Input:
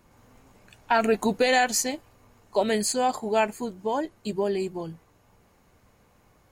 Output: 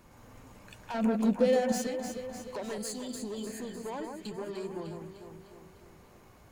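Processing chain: 2.87–3.69 spectral repair 640–3000 Hz before; 2.78–3.47 elliptic band-stop 400–3000 Hz; compressor 2.5:1, threshold -39 dBFS, peak gain reduction 14.5 dB; soft clip -35.5 dBFS, distortion -11 dB; 0.94–1.72 small resonant body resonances 230/520 Hz, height 16 dB, ringing for 45 ms; echo with dull and thin repeats by turns 0.151 s, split 2000 Hz, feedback 75%, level -5 dB; gain +2 dB

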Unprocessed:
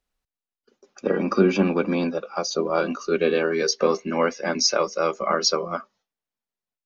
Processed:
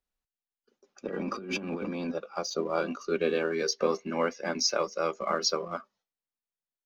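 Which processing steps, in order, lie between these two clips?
in parallel at -10.5 dB: crossover distortion -35 dBFS; 1.06–2.12 on the sum: negative-ratio compressor -26 dBFS, ratio -1; gain -8.5 dB

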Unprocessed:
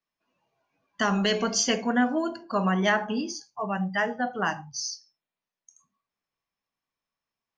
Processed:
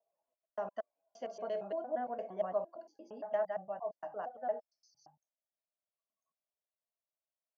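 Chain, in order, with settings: slices in reverse order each 0.115 s, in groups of 5; band-pass 630 Hz, Q 5.8; gain -2.5 dB

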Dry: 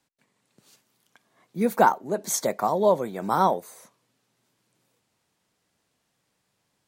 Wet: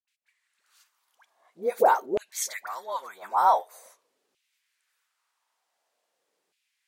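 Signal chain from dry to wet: dispersion highs, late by 80 ms, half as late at 770 Hz; LFO high-pass saw down 0.46 Hz 360–2700 Hz; gain -4.5 dB

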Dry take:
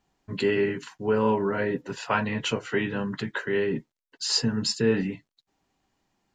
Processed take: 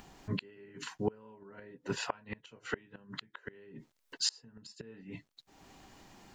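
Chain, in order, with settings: flipped gate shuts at -19 dBFS, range -32 dB; upward compressor, threshold -41 dBFS

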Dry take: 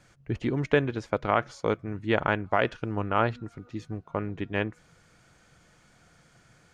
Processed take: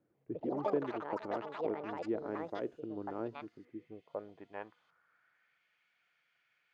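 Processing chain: Bessel low-pass 3800 Hz; band-pass sweep 340 Hz -> 2500 Hz, 3.66–5.66; echoes that change speed 0.14 s, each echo +6 st, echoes 3; gain -6 dB

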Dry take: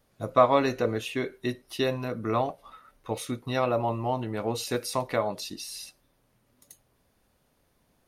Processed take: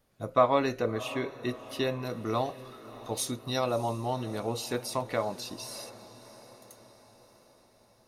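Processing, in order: 2.05–4.4 resonant high shelf 3400 Hz +9 dB, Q 1.5; diffused feedback echo 0.649 s, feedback 54%, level -16 dB; gain -3 dB

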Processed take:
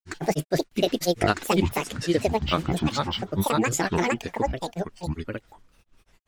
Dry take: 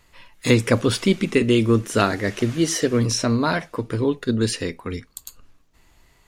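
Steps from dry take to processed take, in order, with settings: grains, spray 0.806 s, pitch spread up and down by 12 st; gain -2 dB

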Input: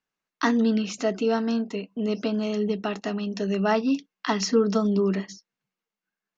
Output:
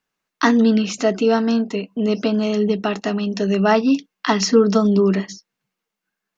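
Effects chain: gain +7 dB

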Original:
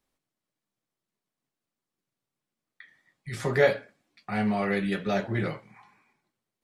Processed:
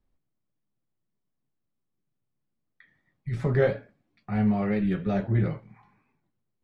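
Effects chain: RIAA curve playback; record warp 45 rpm, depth 100 cents; gain -4.5 dB

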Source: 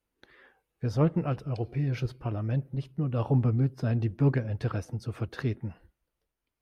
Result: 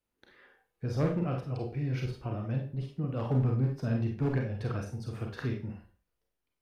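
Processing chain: hard clip -18.5 dBFS, distortion -20 dB; Schroeder reverb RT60 0.35 s, combs from 31 ms, DRR 1 dB; gain -4.5 dB

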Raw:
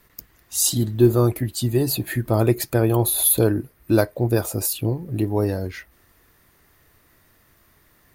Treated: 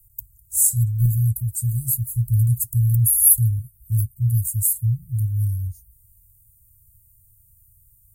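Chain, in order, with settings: Chebyshev band-stop 120–7900 Hz, order 4; 1.05–1.85 dynamic EQ 140 Hz, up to -4 dB, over -34 dBFS, Q 2.6; gain +5.5 dB

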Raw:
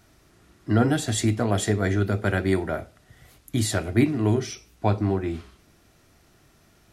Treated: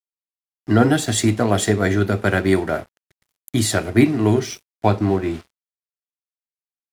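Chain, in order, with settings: HPF 120 Hz 6 dB/oct; crossover distortion -46 dBFS; gain +7 dB

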